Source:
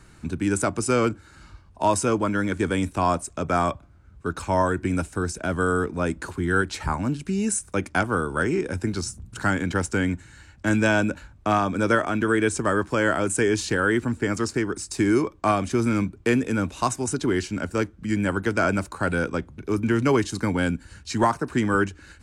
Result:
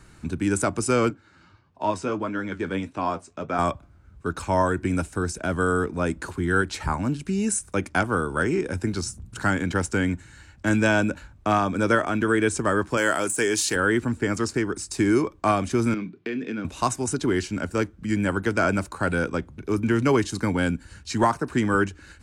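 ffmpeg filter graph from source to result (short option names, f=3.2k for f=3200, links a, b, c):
-filter_complex "[0:a]asettb=1/sr,asplit=3[a][b][c];[a]atrim=end=1.104[d];[b]atrim=start=1.1:end=3.59,asetpts=PTS-STARTPTS,afade=t=in:d=0.004:c=qsin,afade=t=out:st=2.486:d=0.004:c=qsin,flanger=delay=6.3:depth=6:regen=53:speed=1.6:shape=triangular,highpass=120,lowpass=4.6k[e];[c]atrim=start=3.586[f];[d][e]acrossfade=d=0.004:c1=hsin:c2=qsin[g];[g][f]acrossfade=d=0.004:c1=qsin:c2=hsin,asettb=1/sr,asplit=3[h][i][j];[h]atrim=end=12.974[k];[i]atrim=start=12.97:end=13.76,asetpts=PTS-STARTPTS,afade=t=in:d=0.004:c=qsin,afade=t=out:st=0.786:d=0.004:c=qsin,aemphasis=mode=production:type=bsi,deesser=0.35[l];[j]atrim=start=13.756[m];[k][l]acrossfade=d=0.004:c1=hsin:c2=qsin[n];[n][m]acrossfade=d=0.004:c1=qsin:c2=hsin,asettb=1/sr,asplit=3[o][p][q];[o]atrim=end=15.944[r];[p]atrim=start=15.94:end=16.65,asetpts=PTS-STARTPTS,afade=t=in:d=0.004:c=qsin,afade=t=out:st=0.706:d=0.004:c=qsin,acompressor=threshold=-24dB:ratio=6:attack=3.2:release=140:knee=1:detection=peak,highpass=f=160:w=0.5412,highpass=f=160:w=1.3066,equalizer=f=560:t=q:w=4:g=-8,equalizer=f=890:t=q:w=4:g=-9,equalizer=f=1.3k:t=q:w=4:g=-5,lowpass=f=4.5k:w=0.5412,lowpass=f=4.5k:w=1.3066,asplit=2[s][t];[t]adelay=28,volume=-12.5dB[u];[s][u]amix=inputs=2:normalize=0,atrim=end_sample=31311[v];[q]atrim=start=16.646[w];[r][v]acrossfade=d=0.004:c1=hsin:c2=qsin[x];[x][w]acrossfade=d=0.004:c1=qsin:c2=hsin"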